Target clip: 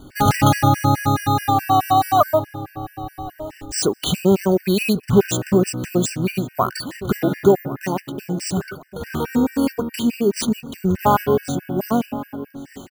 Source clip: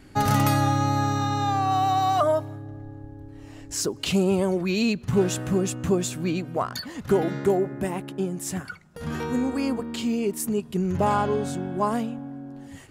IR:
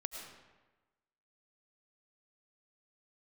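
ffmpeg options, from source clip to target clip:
-filter_complex "[0:a]asplit=2[link_01][link_02];[link_02]adelay=1104,lowpass=frequency=4300:poles=1,volume=-17.5dB,asplit=2[link_03][link_04];[link_04]adelay=1104,lowpass=frequency=4300:poles=1,volume=0.34,asplit=2[link_05][link_06];[link_06]adelay=1104,lowpass=frequency=4300:poles=1,volume=0.34[link_07];[link_01][link_03][link_05][link_07]amix=inputs=4:normalize=0,acrusher=samples=3:mix=1:aa=0.000001,afftfilt=real='re*gt(sin(2*PI*4.7*pts/sr)*(1-2*mod(floor(b*sr/1024/1500),2)),0)':imag='im*gt(sin(2*PI*4.7*pts/sr)*(1-2*mod(floor(b*sr/1024/1500),2)),0)':win_size=1024:overlap=0.75,volume=8.5dB"

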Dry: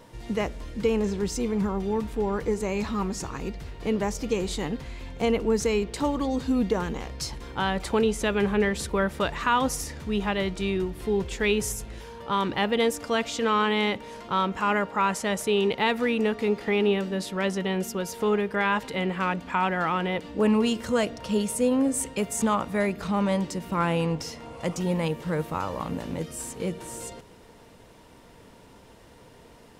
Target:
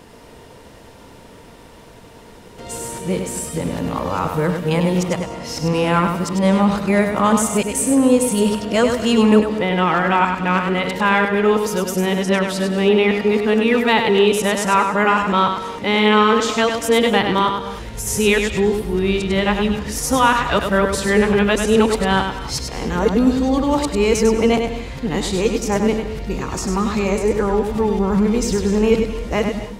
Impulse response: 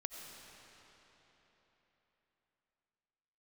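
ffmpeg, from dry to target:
-filter_complex "[0:a]areverse,asplit=2[link_01][link_02];[1:a]atrim=start_sample=2205,afade=type=out:start_time=0.27:duration=0.01,atrim=end_sample=12348,adelay=99[link_03];[link_02][link_03]afir=irnorm=-1:irlink=0,volume=-2.5dB[link_04];[link_01][link_04]amix=inputs=2:normalize=0,volume=8dB"

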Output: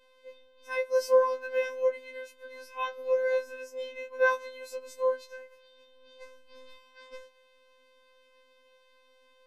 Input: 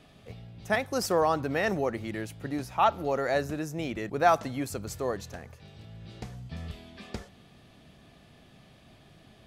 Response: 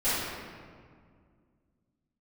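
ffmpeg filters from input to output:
-af "afftfilt=real='hypot(re,im)*cos(PI*b)':imag='0':win_size=1024:overlap=0.75,bass=frequency=250:gain=-6,treble=frequency=4000:gain=-10,afftfilt=real='re*3.46*eq(mod(b,12),0)':imag='im*3.46*eq(mod(b,12),0)':win_size=2048:overlap=0.75"

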